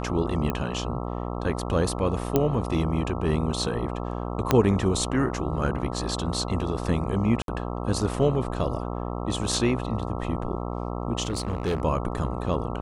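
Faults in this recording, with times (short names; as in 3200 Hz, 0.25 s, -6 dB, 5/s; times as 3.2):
buzz 60 Hz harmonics 22 -31 dBFS
0.5 pop -14 dBFS
2.36 pop -8 dBFS
4.51 pop -5 dBFS
7.42–7.48 gap 62 ms
11.22–11.82 clipped -22 dBFS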